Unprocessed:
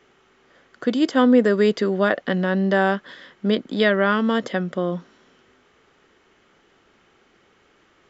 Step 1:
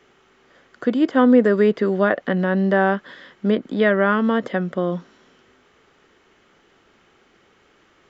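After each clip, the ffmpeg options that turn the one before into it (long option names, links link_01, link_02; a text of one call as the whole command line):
ffmpeg -i in.wav -filter_complex "[0:a]acrossover=split=2600[link_01][link_02];[link_02]acompressor=threshold=-50dB:ratio=4:attack=1:release=60[link_03];[link_01][link_03]amix=inputs=2:normalize=0,volume=1.5dB" out.wav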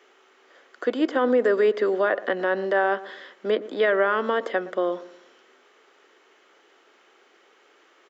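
ffmpeg -i in.wav -filter_complex "[0:a]highpass=frequency=340:width=0.5412,highpass=frequency=340:width=1.3066,alimiter=limit=-12.5dB:level=0:latency=1:release=31,asplit=2[link_01][link_02];[link_02]adelay=117,lowpass=frequency=830:poles=1,volume=-14.5dB,asplit=2[link_03][link_04];[link_04]adelay=117,lowpass=frequency=830:poles=1,volume=0.41,asplit=2[link_05][link_06];[link_06]adelay=117,lowpass=frequency=830:poles=1,volume=0.41,asplit=2[link_07][link_08];[link_08]adelay=117,lowpass=frequency=830:poles=1,volume=0.41[link_09];[link_01][link_03][link_05][link_07][link_09]amix=inputs=5:normalize=0" out.wav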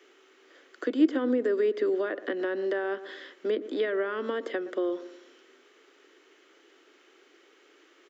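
ffmpeg -i in.wav -filter_complex "[0:a]equalizer=frequency=810:width_type=o:width=1.5:gain=-8.5,acrossover=split=300[link_01][link_02];[link_02]acompressor=threshold=-33dB:ratio=3[link_03];[link_01][link_03]amix=inputs=2:normalize=0,lowshelf=frequency=220:width_type=q:width=3:gain=-9.5" out.wav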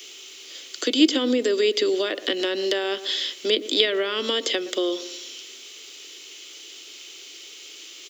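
ffmpeg -i in.wav -af "aexciter=amount=9.9:drive=6.6:freq=2500,volume=4dB" out.wav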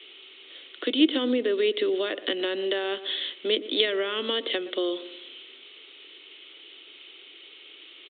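ffmpeg -i in.wav -af "aresample=8000,aresample=44100,volume=-3dB" out.wav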